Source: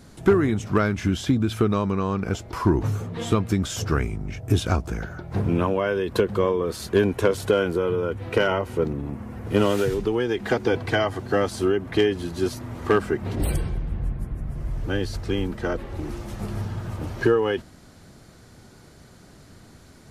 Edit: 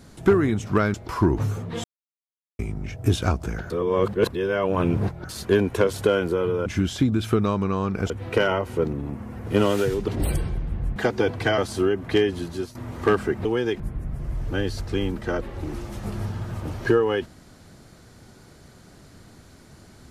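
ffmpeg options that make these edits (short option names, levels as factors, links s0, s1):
-filter_complex "[0:a]asplit=14[s0][s1][s2][s3][s4][s5][s6][s7][s8][s9][s10][s11][s12][s13];[s0]atrim=end=0.942[s14];[s1]atrim=start=2.378:end=3.28,asetpts=PTS-STARTPTS,afade=t=out:st=0.898:d=0.004:c=hsin[s15];[s2]atrim=start=3.28:end=4.03,asetpts=PTS-STARTPTS,volume=0[s16];[s3]atrim=start=4.03:end=5.142,asetpts=PTS-STARTPTS,afade=t=in:d=0.004:c=hsin[s17];[s4]atrim=start=5.138:end=6.732,asetpts=PTS-STARTPTS,areverse[s18];[s5]atrim=start=6.728:end=8.102[s19];[s6]atrim=start=0.938:end=2.382[s20];[s7]atrim=start=8.098:end=10.082[s21];[s8]atrim=start=13.278:end=14.162[s22];[s9]atrim=start=10.428:end=11.052[s23];[s10]atrim=start=11.408:end=12.58,asetpts=PTS-STARTPTS,afade=t=out:st=0.842:d=0.33:silence=0.177828[s24];[s11]atrim=start=12.58:end=13.282,asetpts=PTS-STARTPTS,afade=t=in:d=0.004:c=hsin:silence=0.177828[s25];[s12]atrim=start=10.078:end=10.432[s26];[s13]atrim=start=14.158[s27];[s15][s16][s17]concat=n=3:v=0:a=1[s28];[s14][s28]acrossfade=d=0.004:c1=hsin:c2=hsin[s29];[s29][s18]acrossfade=d=0.004:c1=hsin:c2=hsin[s30];[s30][s19]acrossfade=d=0.004:c1=hsin:c2=hsin[s31];[s31][s20]acrossfade=d=0.004:c1=hsin:c2=hsin[s32];[s32][s21]acrossfade=d=0.004:c1=hsin:c2=hsin[s33];[s33][s22]acrossfade=d=0.004:c1=hsin:c2=hsin[s34];[s34][s23]acrossfade=d=0.004:c1=hsin:c2=hsin[s35];[s24][s25]concat=n=2:v=0:a=1[s36];[s35][s36]acrossfade=d=0.004:c1=hsin:c2=hsin[s37];[s37][s26]acrossfade=d=0.004:c1=hsin:c2=hsin[s38];[s38][s27]acrossfade=d=0.004:c1=hsin:c2=hsin"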